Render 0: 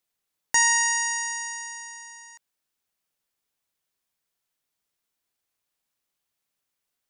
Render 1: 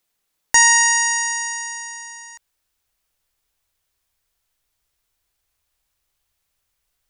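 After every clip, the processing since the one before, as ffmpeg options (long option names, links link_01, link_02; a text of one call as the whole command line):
ffmpeg -i in.wav -af "asubboost=boost=10.5:cutoff=66,volume=7.5dB" out.wav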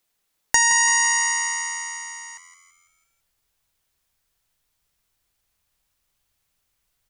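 ffmpeg -i in.wav -filter_complex "[0:a]acompressor=threshold=-14dB:ratio=6,asplit=2[link_01][link_02];[link_02]asplit=5[link_03][link_04][link_05][link_06][link_07];[link_03]adelay=166,afreqshift=86,volume=-12dB[link_08];[link_04]adelay=332,afreqshift=172,volume=-18dB[link_09];[link_05]adelay=498,afreqshift=258,volume=-24dB[link_10];[link_06]adelay=664,afreqshift=344,volume=-30.1dB[link_11];[link_07]adelay=830,afreqshift=430,volume=-36.1dB[link_12];[link_08][link_09][link_10][link_11][link_12]amix=inputs=5:normalize=0[link_13];[link_01][link_13]amix=inputs=2:normalize=0" out.wav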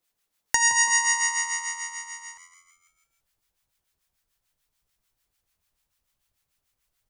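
ffmpeg -i in.wav -filter_complex "[0:a]acrossover=split=960[link_01][link_02];[link_01]aeval=exprs='val(0)*(1-0.7/2+0.7/2*cos(2*PI*6.8*n/s))':channel_layout=same[link_03];[link_02]aeval=exprs='val(0)*(1-0.7/2-0.7/2*cos(2*PI*6.8*n/s))':channel_layout=same[link_04];[link_03][link_04]amix=inputs=2:normalize=0" out.wav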